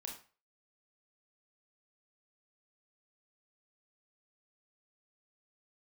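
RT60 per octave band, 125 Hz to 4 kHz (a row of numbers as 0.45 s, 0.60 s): 0.40 s, 0.35 s, 0.35 s, 0.40 s, 0.35 s, 0.30 s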